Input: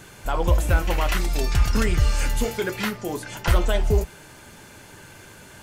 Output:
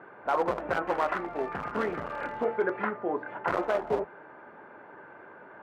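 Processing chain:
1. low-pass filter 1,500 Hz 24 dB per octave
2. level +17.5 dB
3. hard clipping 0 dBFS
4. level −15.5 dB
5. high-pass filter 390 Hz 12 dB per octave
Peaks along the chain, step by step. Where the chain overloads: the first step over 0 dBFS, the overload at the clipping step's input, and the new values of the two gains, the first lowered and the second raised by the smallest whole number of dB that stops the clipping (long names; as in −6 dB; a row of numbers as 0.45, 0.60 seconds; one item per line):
−7.5, +10.0, 0.0, −15.5, −13.5 dBFS
step 2, 10.0 dB
step 2 +7.5 dB, step 4 −5.5 dB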